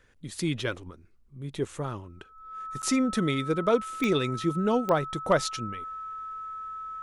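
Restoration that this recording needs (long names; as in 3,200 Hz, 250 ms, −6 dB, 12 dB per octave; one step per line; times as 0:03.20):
clipped peaks rebuilt −12 dBFS
click removal
notch filter 1,300 Hz, Q 30
repair the gap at 0:02.82, 8.8 ms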